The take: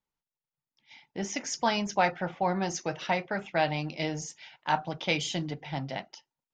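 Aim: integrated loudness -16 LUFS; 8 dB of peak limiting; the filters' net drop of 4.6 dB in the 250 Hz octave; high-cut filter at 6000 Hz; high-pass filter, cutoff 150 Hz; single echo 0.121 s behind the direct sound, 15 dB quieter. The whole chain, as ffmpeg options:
-af "highpass=150,lowpass=6k,equalizer=f=250:t=o:g=-5.5,alimiter=limit=-20dB:level=0:latency=1,aecho=1:1:121:0.178,volume=18.5dB"

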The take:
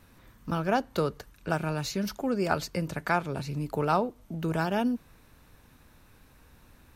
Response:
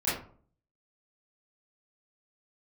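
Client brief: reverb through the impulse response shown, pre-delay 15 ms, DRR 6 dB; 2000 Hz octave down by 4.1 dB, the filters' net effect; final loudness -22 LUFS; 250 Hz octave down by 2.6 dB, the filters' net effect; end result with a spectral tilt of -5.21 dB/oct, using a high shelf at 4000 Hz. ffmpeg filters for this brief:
-filter_complex "[0:a]equalizer=f=250:t=o:g=-3.5,equalizer=f=2k:t=o:g=-7.5,highshelf=f=4k:g=6.5,asplit=2[a][b];[1:a]atrim=start_sample=2205,adelay=15[c];[b][c]afir=irnorm=-1:irlink=0,volume=-16dB[d];[a][d]amix=inputs=2:normalize=0,volume=9dB"

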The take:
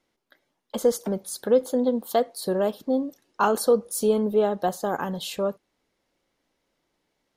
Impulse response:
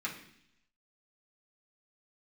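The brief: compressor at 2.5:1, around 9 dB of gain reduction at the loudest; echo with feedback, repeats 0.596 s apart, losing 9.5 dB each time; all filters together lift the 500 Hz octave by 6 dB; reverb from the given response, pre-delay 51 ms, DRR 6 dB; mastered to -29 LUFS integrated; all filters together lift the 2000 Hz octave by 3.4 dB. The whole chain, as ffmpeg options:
-filter_complex "[0:a]equalizer=f=500:t=o:g=6.5,equalizer=f=2k:t=o:g=4.5,acompressor=threshold=-22dB:ratio=2.5,aecho=1:1:596|1192|1788|2384:0.335|0.111|0.0365|0.012,asplit=2[a][b];[1:a]atrim=start_sample=2205,adelay=51[c];[b][c]afir=irnorm=-1:irlink=0,volume=-9.5dB[d];[a][d]amix=inputs=2:normalize=0,volume=-4dB"

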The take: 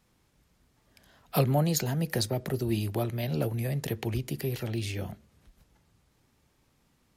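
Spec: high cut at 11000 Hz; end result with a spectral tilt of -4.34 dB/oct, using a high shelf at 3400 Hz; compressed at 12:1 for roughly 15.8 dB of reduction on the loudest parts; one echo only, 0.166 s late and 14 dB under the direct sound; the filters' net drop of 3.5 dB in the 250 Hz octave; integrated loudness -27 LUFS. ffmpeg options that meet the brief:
-af "lowpass=11k,equalizer=f=250:t=o:g=-6,highshelf=f=3.4k:g=8.5,acompressor=threshold=-36dB:ratio=12,aecho=1:1:166:0.2,volume=13dB"

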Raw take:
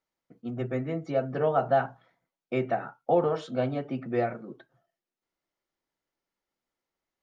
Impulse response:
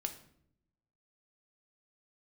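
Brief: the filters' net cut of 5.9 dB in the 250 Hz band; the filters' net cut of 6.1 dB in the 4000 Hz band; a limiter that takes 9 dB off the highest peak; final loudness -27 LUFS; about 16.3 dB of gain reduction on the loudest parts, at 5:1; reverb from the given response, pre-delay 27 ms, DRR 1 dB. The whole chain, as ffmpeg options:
-filter_complex "[0:a]equalizer=f=250:t=o:g=-8,equalizer=f=4k:t=o:g=-9,acompressor=threshold=-39dB:ratio=5,alimiter=level_in=11dB:limit=-24dB:level=0:latency=1,volume=-11dB,asplit=2[a][b];[1:a]atrim=start_sample=2205,adelay=27[c];[b][c]afir=irnorm=-1:irlink=0,volume=-1dB[d];[a][d]amix=inputs=2:normalize=0,volume=16.5dB"

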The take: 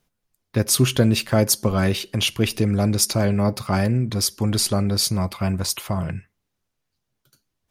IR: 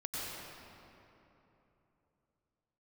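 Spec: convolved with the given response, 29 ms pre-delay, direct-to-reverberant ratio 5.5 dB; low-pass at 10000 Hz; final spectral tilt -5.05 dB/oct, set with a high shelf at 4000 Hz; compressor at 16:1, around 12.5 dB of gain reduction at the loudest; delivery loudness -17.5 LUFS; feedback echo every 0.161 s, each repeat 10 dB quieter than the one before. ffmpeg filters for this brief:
-filter_complex "[0:a]lowpass=10k,highshelf=f=4k:g=-5.5,acompressor=threshold=-25dB:ratio=16,aecho=1:1:161|322|483|644:0.316|0.101|0.0324|0.0104,asplit=2[a][b];[1:a]atrim=start_sample=2205,adelay=29[c];[b][c]afir=irnorm=-1:irlink=0,volume=-8.5dB[d];[a][d]amix=inputs=2:normalize=0,volume=11.5dB"

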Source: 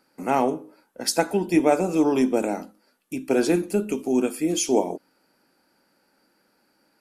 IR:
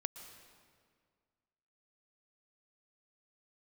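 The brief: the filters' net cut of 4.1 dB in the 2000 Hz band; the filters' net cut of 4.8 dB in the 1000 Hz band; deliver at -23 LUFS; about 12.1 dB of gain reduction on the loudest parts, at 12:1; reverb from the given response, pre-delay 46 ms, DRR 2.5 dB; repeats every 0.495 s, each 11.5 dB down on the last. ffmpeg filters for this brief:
-filter_complex "[0:a]equalizer=f=1k:t=o:g=-6.5,equalizer=f=2k:t=o:g=-3.5,acompressor=threshold=-26dB:ratio=12,aecho=1:1:495|990|1485:0.266|0.0718|0.0194,asplit=2[a][b];[1:a]atrim=start_sample=2205,adelay=46[c];[b][c]afir=irnorm=-1:irlink=0,volume=-1dB[d];[a][d]amix=inputs=2:normalize=0,volume=7dB"

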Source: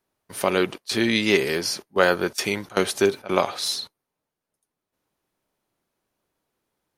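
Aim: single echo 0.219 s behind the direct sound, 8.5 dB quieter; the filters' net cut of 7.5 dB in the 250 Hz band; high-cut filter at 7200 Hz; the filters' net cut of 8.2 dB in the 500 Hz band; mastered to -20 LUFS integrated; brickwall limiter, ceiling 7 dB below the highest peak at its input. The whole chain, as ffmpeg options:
-af "lowpass=7.2k,equalizer=f=250:t=o:g=-7.5,equalizer=f=500:t=o:g=-8,alimiter=limit=-11dB:level=0:latency=1,aecho=1:1:219:0.376,volume=7dB"

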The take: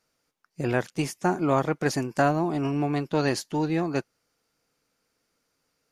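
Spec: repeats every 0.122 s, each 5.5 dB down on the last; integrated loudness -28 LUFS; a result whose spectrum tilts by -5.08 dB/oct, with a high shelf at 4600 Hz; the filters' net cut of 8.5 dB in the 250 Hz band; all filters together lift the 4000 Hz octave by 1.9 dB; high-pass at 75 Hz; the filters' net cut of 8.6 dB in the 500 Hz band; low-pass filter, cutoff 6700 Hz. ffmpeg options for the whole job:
-af "highpass=75,lowpass=6.7k,equalizer=f=250:t=o:g=-8.5,equalizer=f=500:t=o:g=-9,equalizer=f=4k:t=o:g=6.5,highshelf=f=4.6k:g=-5.5,aecho=1:1:122|244|366|488|610|732|854:0.531|0.281|0.149|0.079|0.0419|0.0222|0.0118,volume=2.5dB"

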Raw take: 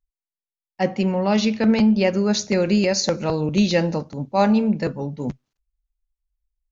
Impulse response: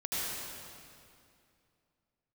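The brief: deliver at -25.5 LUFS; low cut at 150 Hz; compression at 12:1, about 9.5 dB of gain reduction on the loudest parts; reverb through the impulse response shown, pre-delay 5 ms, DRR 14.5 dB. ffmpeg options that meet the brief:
-filter_complex "[0:a]highpass=150,acompressor=threshold=-23dB:ratio=12,asplit=2[a][b];[1:a]atrim=start_sample=2205,adelay=5[c];[b][c]afir=irnorm=-1:irlink=0,volume=-21dB[d];[a][d]amix=inputs=2:normalize=0,volume=2.5dB"

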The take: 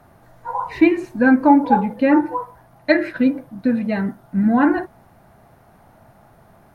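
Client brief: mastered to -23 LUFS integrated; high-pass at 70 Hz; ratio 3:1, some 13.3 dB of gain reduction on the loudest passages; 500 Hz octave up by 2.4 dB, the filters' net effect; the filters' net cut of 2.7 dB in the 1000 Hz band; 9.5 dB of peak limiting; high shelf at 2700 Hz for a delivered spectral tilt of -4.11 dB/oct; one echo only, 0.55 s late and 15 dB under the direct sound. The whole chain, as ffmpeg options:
-af "highpass=70,equalizer=f=500:t=o:g=4.5,equalizer=f=1k:t=o:g=-4.5,highshelf=f=2.7k:g=-4.5,acompressor=threshold=-26dB:ratio=3,alimiter=limit=-23dB:level=0:latency=1,aecho=1:1:550:0.178,volume=9.5dB"

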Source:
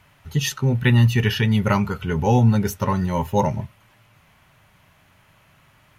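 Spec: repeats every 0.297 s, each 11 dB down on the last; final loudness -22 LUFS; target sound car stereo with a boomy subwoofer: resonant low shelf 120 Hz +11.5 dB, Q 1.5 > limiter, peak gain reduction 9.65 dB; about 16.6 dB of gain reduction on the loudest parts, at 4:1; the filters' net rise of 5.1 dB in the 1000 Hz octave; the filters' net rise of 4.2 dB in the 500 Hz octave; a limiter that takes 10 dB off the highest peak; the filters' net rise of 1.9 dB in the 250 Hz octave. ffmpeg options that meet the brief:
-af "equalizer=f=250:t=o:g=4,equalizer=f=500:t=o:g=3.5,equalizer=f=1k:t=o:g=5,acompressor=threshold=-30dB:ratio=4,alimiter=level_in=3dB:limit=-24dB:level=0:latency=1,volume=-3dB,lowshelf=f=120:t=q:w=1.5:g=11.5,aecho=1:1:297|594|891:0.282|0.0789|0.0221,volume=14dB,alimiter=limit=-13.5dB:level=0:latency=1"

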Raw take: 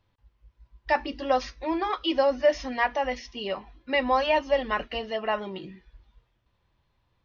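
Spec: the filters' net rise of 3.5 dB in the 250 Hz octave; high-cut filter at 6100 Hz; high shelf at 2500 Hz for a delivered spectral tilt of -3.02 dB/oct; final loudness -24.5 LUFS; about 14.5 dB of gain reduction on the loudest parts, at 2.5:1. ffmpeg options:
-af "lowpass=6.1k,equalizer=f=250:t=o:g=4.5,highshelf=f=2.5k:g=-5,acompressor=threshold=-40dB:ratio=2.5,volume=14.5dB"

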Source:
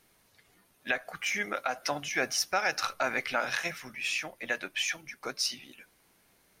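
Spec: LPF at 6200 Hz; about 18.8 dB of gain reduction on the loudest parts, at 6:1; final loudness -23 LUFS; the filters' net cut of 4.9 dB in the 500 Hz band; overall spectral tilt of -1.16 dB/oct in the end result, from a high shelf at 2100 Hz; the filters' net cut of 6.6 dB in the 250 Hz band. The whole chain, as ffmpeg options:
-af "lowpass=6.2k,equalizer=f=250:t=o:g=-7,equalizer=f=500:t=o:g=-4.5,highshelf=f=2.1k:g=-3.5,acompressor=threshold=-48dB:ratio=6,volume=27dB"

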